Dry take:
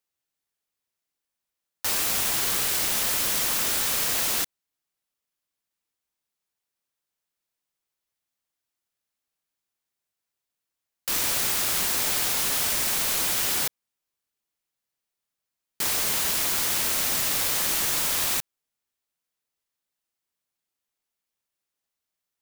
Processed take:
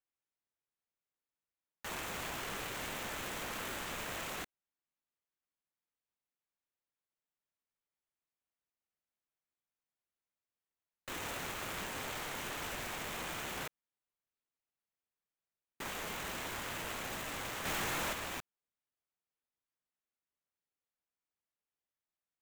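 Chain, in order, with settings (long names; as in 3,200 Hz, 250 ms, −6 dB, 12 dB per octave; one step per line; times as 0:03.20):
running median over 9 samples
0:17.65–0:18.13: power curve on the samples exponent 0.5
level −8.5 dB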